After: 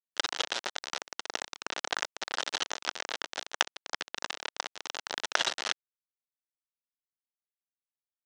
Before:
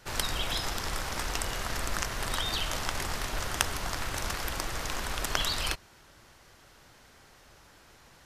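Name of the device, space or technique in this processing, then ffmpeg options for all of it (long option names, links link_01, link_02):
hand-held game console: -filter_complex "[0:a]asettb=1/sr,asplit=3[link_01][link_02][link_03];[link_01]atrim=end=4.304[link_04];[link_02]atrim=start=4.3:end=5.25,asetpts=PTS-STARTPTS,afade=type=in:duration=0.004:curve=qsin,afade=type=out:start_time=0.946:duration=0.004:curve=qsin,equalizer=frequency=730:width_type=o:width=0.62:gain=4.5[link_05];[link_03]atrim=start=5.246[link_06];[link_04][link_05]acrossfade=duration=0.004:curve1=hsin:curve2=qsin[link_07];[link_07][link_06]acrossfade=duration=0.004:curve1=qsin:curve2=hsin,acrusher=bits=3:mix=0:aa=0.000001,highpass=450,equalizer=frequency=1100:width_type=q:width=4:gain=-5,equalizer=frequency=2300:width_type=q:width=4:gain=-5,equalizer=frequency=4700:width_type=q:width=4:gain=-4,lowpass=frequency=5600:width=0.5412,lowpass=frequency=5600:width=1.3066,volume=5dB"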